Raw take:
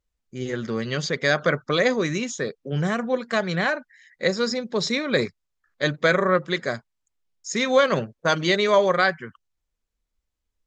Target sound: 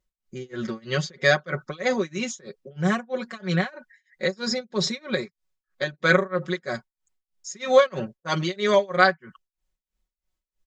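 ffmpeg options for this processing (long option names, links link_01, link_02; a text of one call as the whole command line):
ffmpeg -i in.wav -filter_complex "[0:a]asettb=1/sr,asplit=3[link_01][link_02][link_03];[link_01]atrim=end=4.994[link_04];[link_02]atrim=start=4.99:end=5.93,asetpts=PTS-STARTPTS,afade=type=in:duration=0.004:curve=qsin,afade=type=out:start_time=0.936:duration=0.004:curve=qsin,acompressor=threshold=-25dB:ratio=5[link_05];[link_03]atrim=start=5.926[link_06];[link_04][link_05]acrossfade=duration=0.004:curve1=hsin:curve2=qsin[link_07];[link_07][link_06]acrossfade=duration=0.004:curve1=qsin:curve2=hsin,tremolo=f=3.1:d=0.97,aecho=1:1:5.4:0.77" out.wav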